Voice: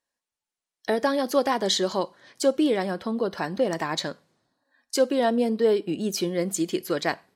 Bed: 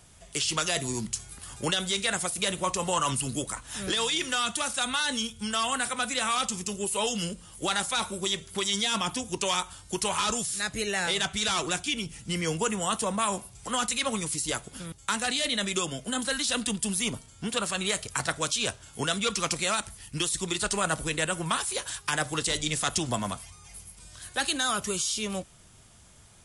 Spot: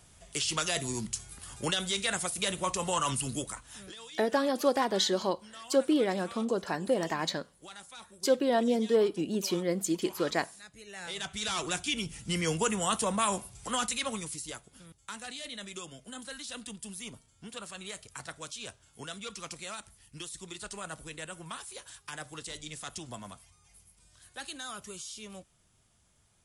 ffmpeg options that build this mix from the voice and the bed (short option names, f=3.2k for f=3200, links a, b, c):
-filter_complex "[0:a]adelay=3300,volume=-4dB[a];[1:a]volume=16dB,afade=t=out:st=3.35:d=0.59:silence=0.141254,afade=t=in:st=10.85:d=1.23:silence=0.112202,afade=t=out:st=13.52:d=1.1:silence=0.237137[b];[a][b]amix=inputs=2:normalize=0"